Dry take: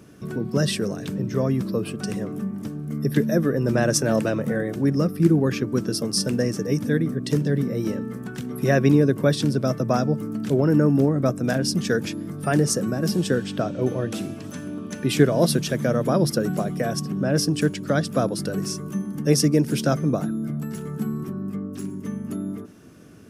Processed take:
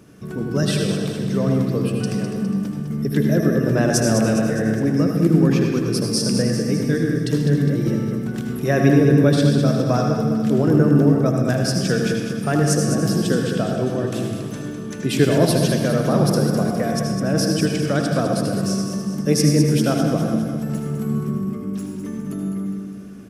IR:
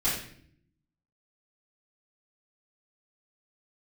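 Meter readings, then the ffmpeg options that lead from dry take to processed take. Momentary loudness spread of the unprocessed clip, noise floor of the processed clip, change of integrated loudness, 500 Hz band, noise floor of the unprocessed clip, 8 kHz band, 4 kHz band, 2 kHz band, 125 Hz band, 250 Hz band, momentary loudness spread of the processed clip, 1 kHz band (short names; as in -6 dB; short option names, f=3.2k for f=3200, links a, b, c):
12 LU, -30 dBFS, +3.5 dB, +3.0 dB, -36 dBFS, +2.5 dB, +2.5 dB, +2.5 dB, +4.5 dB, +4.0 dB, 10 LU, +3.0 dB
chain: -filter_complex "[0:a]aecho=1:1:205|410|615|820|1025|1230:0.398|0.211|0.112|0.0593|0.0314|0.0166,asplit=2[a][b];[1:a]atrim=start_sample=2205,adelay=73[c];[b][c]afir=irnorm=-1:irlink=0,volume=-12.5dB[d];[a][d]amix=inputs=2:normalize=0"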